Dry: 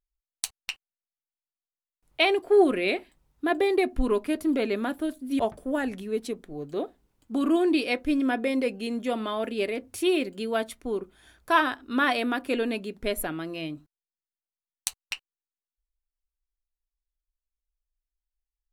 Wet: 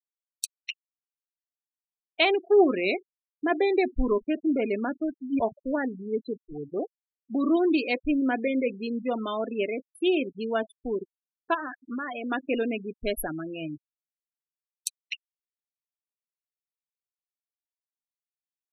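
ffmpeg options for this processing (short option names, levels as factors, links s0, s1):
-filter_complex "[0:a]asplit=3[s0][s1][s2];[s0]afade=t=out:st=11.53:d=0.02[s3];[s1]acompressor=threshold=0.0355:ratio=6:attack=3.2:release=140:knee=1:detection=peak,afade=t=in:st=11.53:d=0.02,afade=t=out:st=12.3:d=0.02[s4];[s2]afade=t=in:st=12.3:d=0.02[s5];[s3][s4][s5]amix=inputs=3:normalize=0,afftfilt=real='re*gte(hypot(re,im),0.0447)':imag='im*gte(hypot(re,im),0.0447)':win_size=1024:overlap=0.75"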